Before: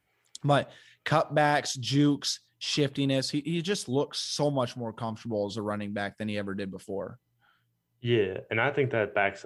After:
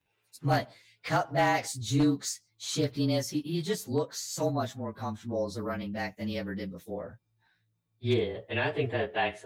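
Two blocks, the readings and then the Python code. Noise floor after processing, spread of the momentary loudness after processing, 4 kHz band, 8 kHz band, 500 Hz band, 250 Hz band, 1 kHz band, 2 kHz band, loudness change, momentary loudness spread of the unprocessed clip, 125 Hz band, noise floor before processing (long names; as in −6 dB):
−77 dBFS, 11 LU, −5.0 dB, 0.0 dB, −3.0 dB, −1.5 dB, −1.5 dB, −3.5 dB, −2.0 dB, 11 LU, −1.0 dB, −75 dBFS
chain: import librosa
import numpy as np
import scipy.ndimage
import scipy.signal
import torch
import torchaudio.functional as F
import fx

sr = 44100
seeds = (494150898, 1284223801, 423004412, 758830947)

y = fx.partial_stretch(x, sr, pct=108)
y = 10.0 ** (-17.0 / 20.0) * (np.abs((y / 10.0 ** (-17.0 / 20.0) + 3.0) % 4.0 - 2.0) - 1.0)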